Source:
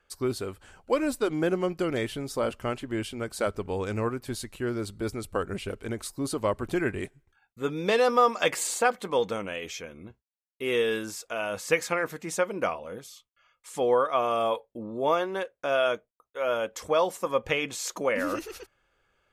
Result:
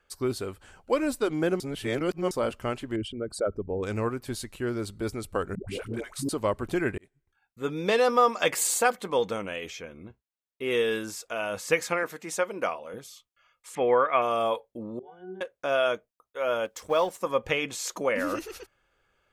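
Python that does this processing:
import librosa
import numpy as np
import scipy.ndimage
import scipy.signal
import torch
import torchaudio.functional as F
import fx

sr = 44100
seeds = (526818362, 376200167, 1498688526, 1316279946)

y = fx.envelope_sharpen(x, sr, power=2.0, at=(2.96, 3.83))
y = fx.dispersion(y, sr, late='highs', ms=133.0, hz=440.0, at=(5.55, 6.29))
y = fx.high_shelf(y, sr, hz=fx.line((8.54, 12000.0), (8.95, 6300.0)), db=11.5, at=(8.54, 8.95), fade=0.02)
y = fx.peak_eq(y, sr, hz=13000.0, db=-6.5, octaves=2.1, at=(9.7, 10.71))
y = fx.highpass(y, sr, hz=310.0, slope=6, at=(12.03, 12.94))
y = fx.lowpass_res(y, sr, hz=2200.0, q=3.2, at=(13.75, 14.22))
y = fx.octave_resonator(y, sr, note='F#', decay_s=0.37, at=(14.99, 15.41))
y = fx.law_mismatch(y, sr, coded='A', at=(16.65, 17.21))
y = fx.edit(y, sr, fx.reverse_span(start_s=1.6, length_s=0.71),
    fx.fade_in_span(start_s=6.98, length_s=0.77), tone=tone)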